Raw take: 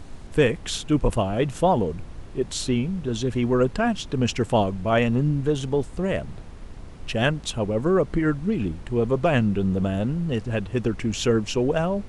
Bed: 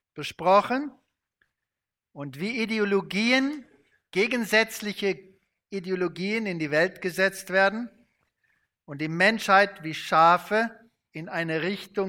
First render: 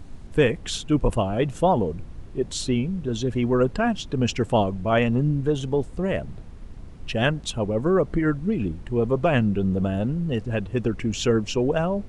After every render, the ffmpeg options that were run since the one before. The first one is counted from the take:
-af "afftdn=nr=6:nf=-40"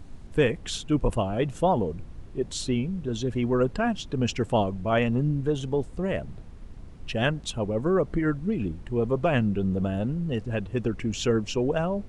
-af "volume=0.708"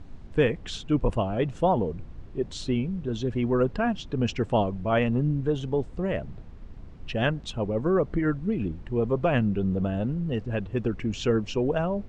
-af "lowpass=6900,highshelf=f=5400:g=-8"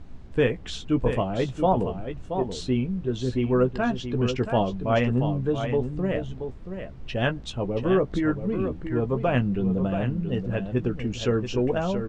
-filter_complex "[0:a]asplit=2[s0][s1];[s1]adelay=16,volume=0.355[s2];[s0][s2]amix=inputs=2:normalize=0,aecho=1:1:679:0.376"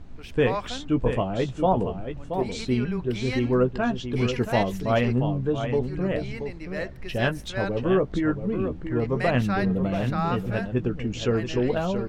-filter_complex "[1:a]volume=0.282[s0];[0:a][s0]amix=inputs=2:normalize=0"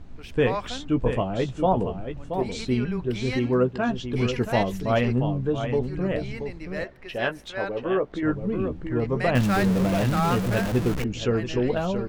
-filter_complex "[0:a]asettb=1/sr,asplit=3[s0][s1][s2];[s0]atrim=end=3.374[s3];[s1]atrim=start=3.37:end=3.89,asetpts=PTS-STARTPTS,afade=t=in:d=0.004:c=qsin,afade=t=out:st=0.516:d=0.004:c=qsin,highpass=83[s4];[s2]atrim=start=3.886[s5];[s3][s4]acrossfade=d=0.004:c1=hsin:c2=qsin[s6];[s6][s5]acrossfade=d=0.004:c1=qsin:c2=hsin,asettb=1/sr,asplit=3[s7][s8][s9];[s7]atrim=end=6.844[s10];[s8]atrim=start=6.84:end=8.23,asetpts=PTS-STARTPTS,afade=t=in:d=0.004:c=qsin,afade=t=out:st=1.386:d=0.004:c=qsin,bass=f=250:g=-13,treble=f=4000:g=-7[s11];[s9]atrim=start=8.226[s12];[s10][s11]acrossfade=d=0.004:c1=hsin:c2=qsin[s13];[s13][s12]acrossfade=d=0.004:c1=qsin:c2=hsin,asettb=1/sr,asplit=3[s14][s15][s16];[s14]atrim=end=9.354[s17];[s15]atrim=start=9.35:end=11.04,asetpts=PTS-STARTPTS,afade=t=in:d=0.004:c=qsin,afade=t=out:st=1.686:d=0.004:c=qsin,aeval=exprs='val(0)+0.5*0.0531*sgn(val(0))':c=same[s18];[s16]atrim=start=11.036[s19];[s17][s18]acrossfade=d=0.004:c1=hsin:c2=qsin[s20];[s20][s19]acrossfade=d=0.004:c1=qsin:c2=hsin"

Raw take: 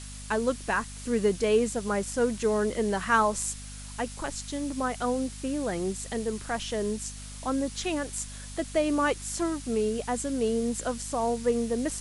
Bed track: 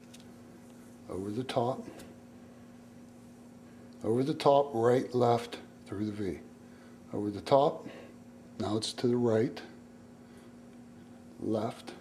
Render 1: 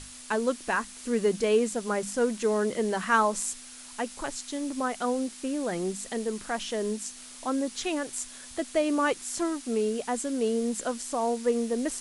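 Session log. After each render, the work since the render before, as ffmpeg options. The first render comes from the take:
-af "bandreject=f=50:t=h:w=6,bandreject=f=100:t=h:w=6,bandreject=f=150:t=h:w=6,bandreject=f=200:t=h:w=6"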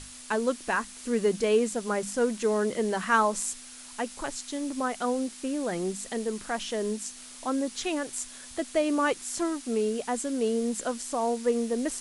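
-af anull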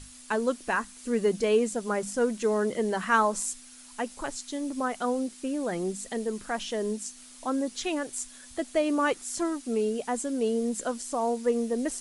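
-af "afftdn=nr=6:nf=-46"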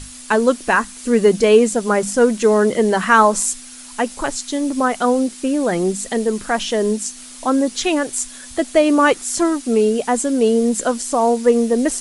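-af "volume=3.98,alimiter=limit=0.891:level=0:latency=1"

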